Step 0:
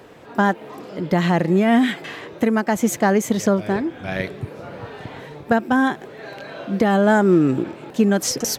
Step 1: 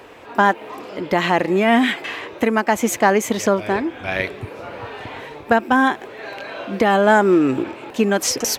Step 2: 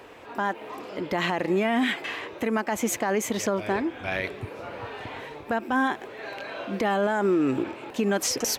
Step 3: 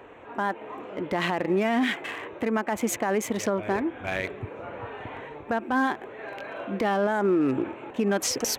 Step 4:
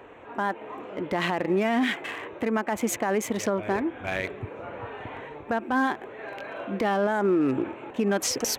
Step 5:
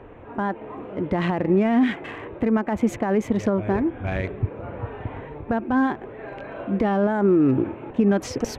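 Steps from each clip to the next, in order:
fifteen-band EQ 160 Hz -12 dB, 1000 Hz +4 dB, 2500 Hz +6 dB; gain +2 dB
limiter -11 dBFS, peak gain reduction 9.5 dB; gain -4.5 dB
Wiener smoothing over 9 samples
nothing audible
RIAA curve playback

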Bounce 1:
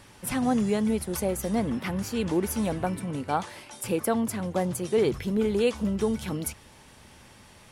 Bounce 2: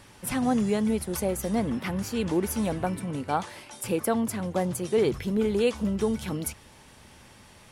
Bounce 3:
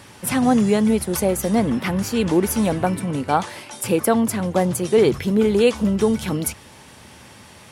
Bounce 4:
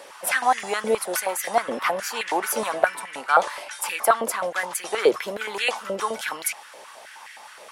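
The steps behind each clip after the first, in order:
nothing audible
HPF 75 Hz; gain +8 dB
stepped high-pass 9.5 Hz 540–1900 Hz; gain -1.5 dB

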